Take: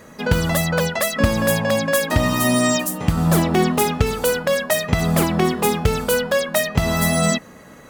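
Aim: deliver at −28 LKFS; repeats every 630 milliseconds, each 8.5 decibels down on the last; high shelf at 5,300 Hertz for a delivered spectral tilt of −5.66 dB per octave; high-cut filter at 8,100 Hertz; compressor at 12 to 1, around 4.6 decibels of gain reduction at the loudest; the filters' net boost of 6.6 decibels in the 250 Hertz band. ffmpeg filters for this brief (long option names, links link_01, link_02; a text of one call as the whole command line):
ffmpeg -i in.wav -af "lowpass=8100,equalizer=frequency=250:width_type=o:gain=8.5,highshelf=frequency=5300:gain=-4,acompressor=threshold=-14dB:ratio=12,aecho=1:1:630|1260|1890|2520:0.376|0.143|0.0543|0.0206,volume=-8.5dB" out.wav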